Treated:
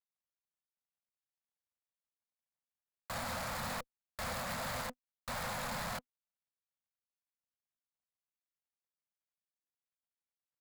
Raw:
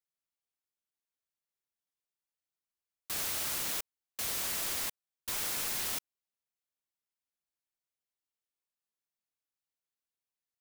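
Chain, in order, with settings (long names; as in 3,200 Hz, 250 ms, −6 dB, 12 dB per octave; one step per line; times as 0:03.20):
running median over 15 samples
Chebyshev band-stop filter 250–500 Hz, order 4
harmonic generator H 3 −18 dB, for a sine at −32.5 dBFS
brickwall limiter −46 dBFS, peak gain reduction 13.5 dB
leveller curve on the samples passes 3
level +12 dB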